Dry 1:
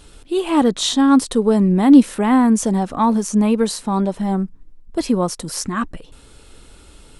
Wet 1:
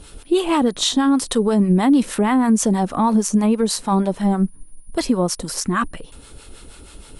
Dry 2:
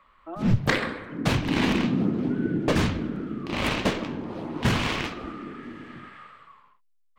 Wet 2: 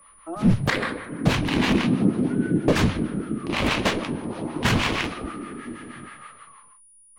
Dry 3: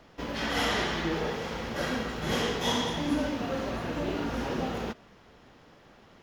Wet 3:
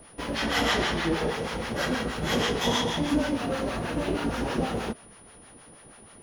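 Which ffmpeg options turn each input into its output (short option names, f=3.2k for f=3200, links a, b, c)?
-filter_complex "[0:a]acrossover=split=690[a][b];[a]aeval=exprs='val(0)*(1-0.7/2+0.7/2*cos(2*PI*6.3*n/s))':c=same[c];[b]aeval=exprs='val(0)*(1-0.7/2-0.7/2*cos(2*PI*6.3*n/s))':c=same[d];[c][d]amix=inputs=2:normalize=0,alimiter=limit=-15dB:level=0:latency=1:release=141,aeval=exprs='val(0)+0.00126*sin(2*PI*9700*n/s)':c=same,volume=6.5dB"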